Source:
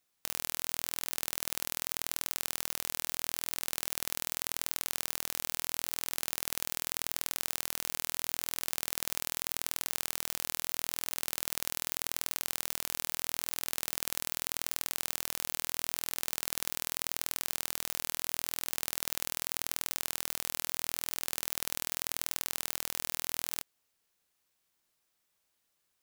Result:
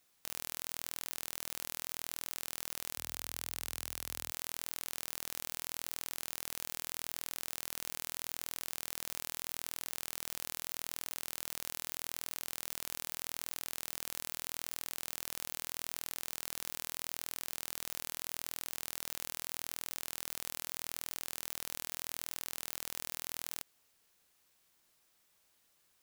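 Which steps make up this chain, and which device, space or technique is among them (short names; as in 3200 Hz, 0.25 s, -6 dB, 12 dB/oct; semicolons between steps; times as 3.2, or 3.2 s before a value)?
2.96–4.31 HPF 57 Hz 24 dB/oct; soft clipper into limiter (soft clip -10.5 dBFS, distortion -14 dB; limiter -18.5 dBFS, peak gain reduction 7.5 dB); gain +6 dB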